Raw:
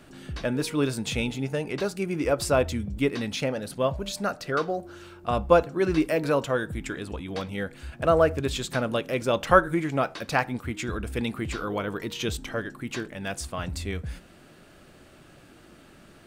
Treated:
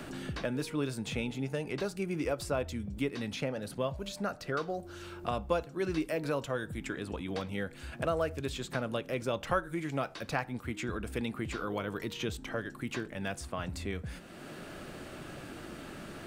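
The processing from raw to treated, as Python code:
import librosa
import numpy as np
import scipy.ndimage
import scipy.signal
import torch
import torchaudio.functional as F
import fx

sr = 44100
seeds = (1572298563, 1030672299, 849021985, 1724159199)

y = fx.band_squash(x, sr, depth_pct=70)
y = y * 10.0 ** (-8.0 / 20.0)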